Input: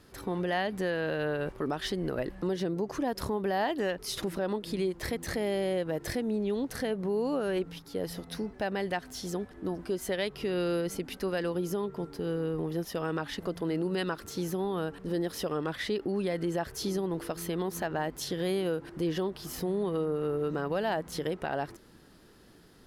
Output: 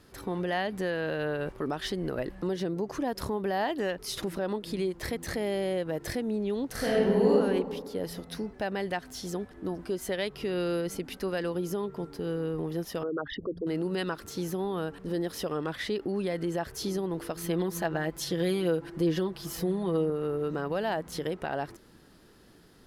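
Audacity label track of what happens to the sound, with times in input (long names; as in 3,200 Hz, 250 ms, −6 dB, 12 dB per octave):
6.710000	7.310000	thrown reverb, RT60 1.6 s, DRR −6 dB
13.030000	13.670000	spectral envelope exaggerated exponent 3
17.430000	20.100000	comb filter 6 ms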